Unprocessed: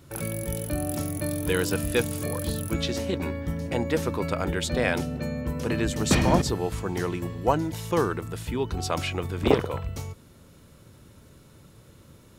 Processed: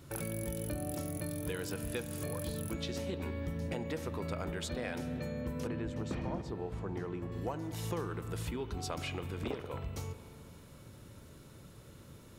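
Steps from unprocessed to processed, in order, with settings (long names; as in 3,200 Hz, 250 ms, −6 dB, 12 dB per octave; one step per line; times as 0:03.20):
in parallel at −3.5 dB: soft clipping −14.5 dBFS, distortion −16 dB
on the sum: downward compressor 6 to 1, threshold −29 dBFS, peak gain reduction 17 dB
0:05.67–0:07.32: low-pass filter 1,400 Hz 6 dB per octave
spring reverb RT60 3 s, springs 36/59 ms, chirp 20 ms, DRR 10.5 dB
level −6.5 dB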